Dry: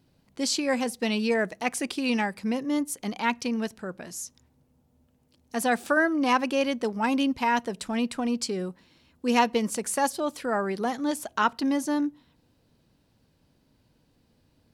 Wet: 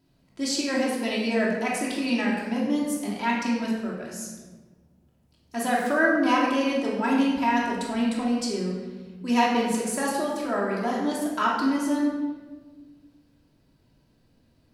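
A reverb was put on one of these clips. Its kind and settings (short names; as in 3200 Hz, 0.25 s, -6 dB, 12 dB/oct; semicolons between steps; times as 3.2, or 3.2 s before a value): shoebox room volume 990 m³, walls mixed, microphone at 2.9 m; gain -5 dB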